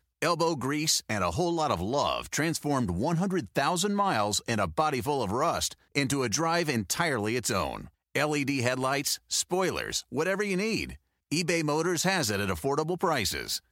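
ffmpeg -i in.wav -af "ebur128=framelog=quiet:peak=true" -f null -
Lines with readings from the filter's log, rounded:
Integrated loudness:
  I:         -28.1 LUFS
  Threshold: -38.2 LUFS
Loudness range:
  LRA:         1.1 LU
  Threshold: -48.2 LUFS
  LRA low:   -28.8 LUFS
  LRA high:  -27.8 LUFS
True peak:
  Peak:       -9.7 dBFS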